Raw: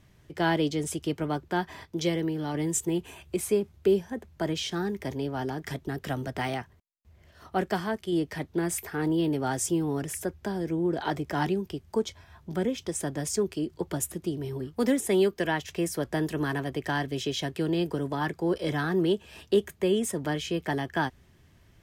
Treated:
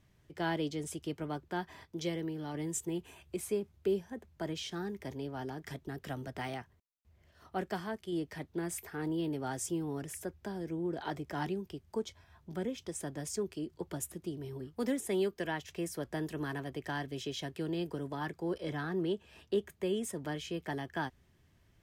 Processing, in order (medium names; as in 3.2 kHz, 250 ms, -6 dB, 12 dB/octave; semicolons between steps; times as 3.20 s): 18.58–19.70 s: treble shelf 5.2 kHz -6 dB; trim -8.5 dB